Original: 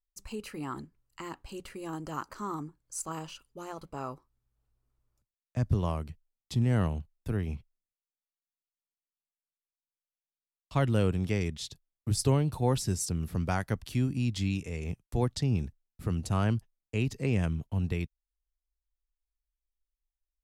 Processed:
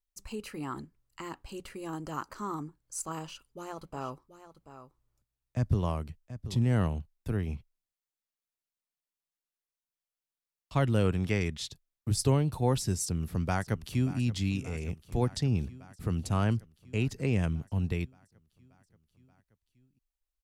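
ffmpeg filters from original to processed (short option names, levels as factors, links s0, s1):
-filter_complex "[0:a]asettb=1/sr,asplit=3[s0][s1][s2];[s0]atrim=end=3.194[s3];[s1]atrim=start=3.19:end=6.57,asetpts=PTS-STARTPTS,afade=t=in:d=0.004:c=qsin,afade=t=out:st=3.376:d=0.004:c=qsin,aecho=1:1:732:0.237,atrim=end_sample=149058[s4];[s2]atrim=start=6.566[s5];[s3][s4]acrossfade=d=0.004:c1=hsin:c2=qsin[s6];[s6][s5]acrossfade=d=0.004:c1=qsin:c2=hsin,asettb=1/sr,asplit=3[s7][s8][s9];[s7]atrim=end=11.054[s10];[s8]atrim=start=11.05:end=11.7,asetpts=PTS-STARTPTS,afade=t=in:d=0.004:c=qsin,afade=t=out:st=0.646:d=0.004:c=qsin,equalizer=f=1600:t=o:w=1.8:g=5[s11];[s9]atrim=start=11.696[s12];[s10][s11]acrossfade=d=0.004:c1=hsin:c2=qsin[s13];[s13][s12]acrossfade=d=0.004:c1=qsin:c2=hsin,asplit=2[s14][s15];[s15]afade=t=in:st=13.03:d=0.01,afade=t=out:st=14.18:d=0.01,aecho=0:1:580|1160|1740|2320|2900|3480|4060|4640|5220|5800:0.149624|0.112218|0.0841633|0.0631224|0.0473418|0.0355064|0.0266298|0.0199723|0.0149793|0.0112344[s16];[s14][s16]amix=inputs=2:normalize=0"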